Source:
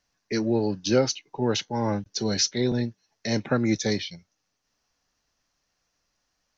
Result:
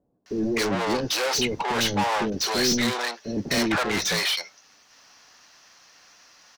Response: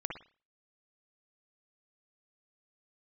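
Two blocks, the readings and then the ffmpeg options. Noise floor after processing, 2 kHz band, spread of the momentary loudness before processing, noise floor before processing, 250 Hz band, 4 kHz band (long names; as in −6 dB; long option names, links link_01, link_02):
−58 dBFS, +9.5 dB, 7 LU, −78 dBFS, −1.0 dB, +6.0 dB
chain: -filter_complex "[0:a]asplit=2[link_01][link_02];[link_02]highpass=frequency=720:poles=1,volume=37dB,asoftclip=type=tanh:threshold=-9.5dB[link_03];[link_01][link_03]amix=inputs=2:normalize=0,lowpass=frequency=5500:poles=1,volume=-6dB,acrossover=split=470[link_04][link_05];[link_05]adelay=260[link_06];[link_04][link_06]amix=inputs=2:normalize=0,volume=-6dB"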